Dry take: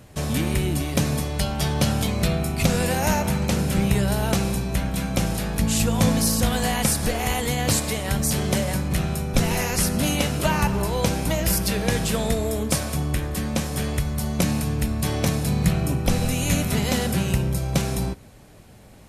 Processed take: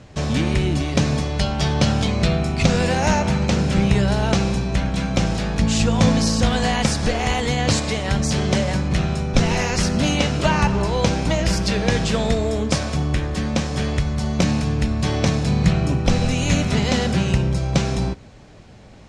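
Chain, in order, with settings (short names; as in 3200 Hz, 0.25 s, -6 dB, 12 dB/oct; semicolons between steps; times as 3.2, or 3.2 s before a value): LPF 6600 Hz 24 dB/oct; gain +3.5 dB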